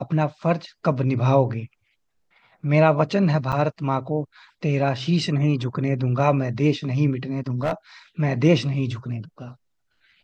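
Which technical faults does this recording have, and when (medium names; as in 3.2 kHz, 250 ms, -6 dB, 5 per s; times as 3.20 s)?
3.52–3.53 s: dropout 6.4 ms
7.37–7.73 s: clipped -18 dBFS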